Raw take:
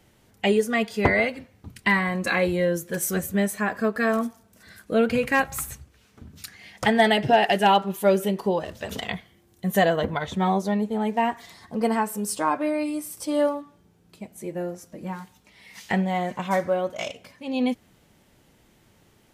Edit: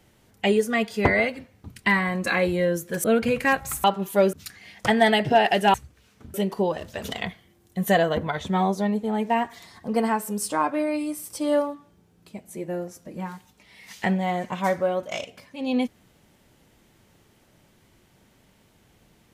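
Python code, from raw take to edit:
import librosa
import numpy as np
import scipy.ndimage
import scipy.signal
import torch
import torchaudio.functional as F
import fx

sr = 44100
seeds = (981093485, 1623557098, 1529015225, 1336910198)

y = fx.edit(x, sr, fx.cut(start_s=3.04, length_s=1.87),
    fx.swap(start_s=5.71, length_s=0.6, other_s=7.72, other_length_s=0.49), tone=tone)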